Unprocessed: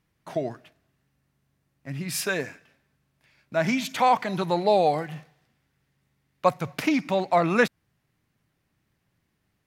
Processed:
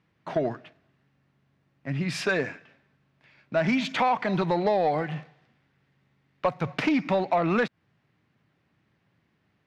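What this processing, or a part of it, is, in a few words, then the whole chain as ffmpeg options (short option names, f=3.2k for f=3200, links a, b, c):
AM radio: -af "highpass=100,lowpass=3.5k,acompressor=threshold=-23dB:ratio=6,asoftclip=type=tanh:threshold=-20dB,volume=5dB"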